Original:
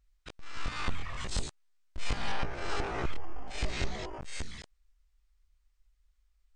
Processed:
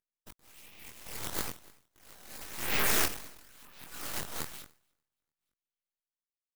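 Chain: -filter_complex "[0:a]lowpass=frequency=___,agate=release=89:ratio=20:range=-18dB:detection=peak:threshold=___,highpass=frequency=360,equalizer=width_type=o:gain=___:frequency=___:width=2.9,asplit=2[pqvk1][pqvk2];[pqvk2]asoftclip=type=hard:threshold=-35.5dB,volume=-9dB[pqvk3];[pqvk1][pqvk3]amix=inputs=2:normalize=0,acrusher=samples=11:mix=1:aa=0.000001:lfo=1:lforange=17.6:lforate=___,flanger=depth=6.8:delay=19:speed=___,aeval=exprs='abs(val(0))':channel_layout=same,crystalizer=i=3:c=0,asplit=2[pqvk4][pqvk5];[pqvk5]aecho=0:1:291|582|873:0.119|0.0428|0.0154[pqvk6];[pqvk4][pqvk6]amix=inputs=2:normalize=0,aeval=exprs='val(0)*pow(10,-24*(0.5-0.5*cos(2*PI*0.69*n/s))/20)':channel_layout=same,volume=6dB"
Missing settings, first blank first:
1600, -56dB, 7.5, 1100, 1, 2.8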